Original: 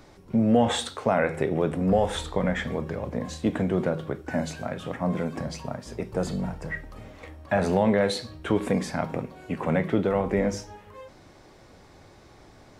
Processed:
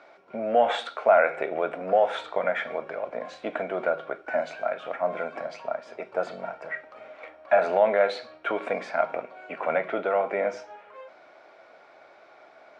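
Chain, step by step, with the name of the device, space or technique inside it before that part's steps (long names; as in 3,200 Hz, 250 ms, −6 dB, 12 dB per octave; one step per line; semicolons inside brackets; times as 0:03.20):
tin-can telephone (band-pass filter 560–3,000 Hz; hollow resonant body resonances 650/1,400/2,300 Hz, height 11 dB, ringing for 25 ms)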